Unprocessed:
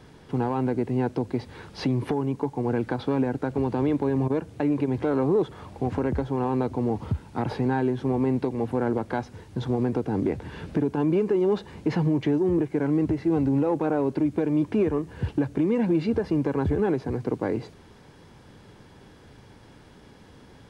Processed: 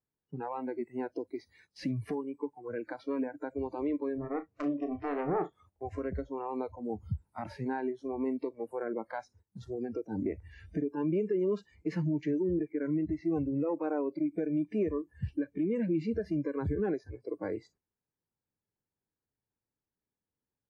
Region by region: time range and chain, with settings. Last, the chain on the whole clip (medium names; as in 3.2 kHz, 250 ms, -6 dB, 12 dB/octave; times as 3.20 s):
4.18–5.53 s: self-modulated delay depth 0.48 ms + low-pass 2.5 kHz 6 dB/octave + flutter echo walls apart 6 m, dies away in 0.23 s
whole clip: spectral noise reduction 26 dB; gate -53 dBFS, range -11 dB; peaking EQ 3.4 kHz -13 dB 0.46 oct; trim -7 dB